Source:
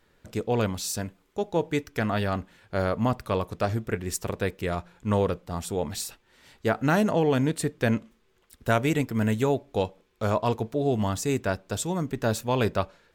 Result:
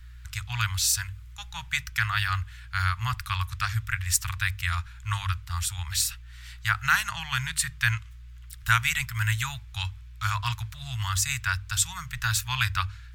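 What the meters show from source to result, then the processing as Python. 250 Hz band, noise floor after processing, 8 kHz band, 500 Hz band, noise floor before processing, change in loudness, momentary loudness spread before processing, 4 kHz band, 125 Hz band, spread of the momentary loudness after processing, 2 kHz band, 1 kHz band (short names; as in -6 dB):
under -20 dB, -45 dBFS, +8.0 dB, under -30 dB, -66 dBFS, 0.0 dB, 9 LU, +8.0 dB, 0.0 dB, 11 LU, +7.5 dB, -1.0 dB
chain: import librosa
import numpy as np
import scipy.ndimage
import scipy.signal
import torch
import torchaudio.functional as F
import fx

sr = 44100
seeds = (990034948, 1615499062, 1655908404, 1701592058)

y = fx.add_hum(x, sr, base_hz=60, snr_db=23)
y = scipy.signal.sosfilt(scipy.signal.cheby2(4, 70, [250.0, 510.0], 'bandstop', fs=sr, output='sos'), y)
y = fx.hum_notches(y, sr, base_hz=50, count=3)
y = y * 10.0 ** (8.0 / 20.0)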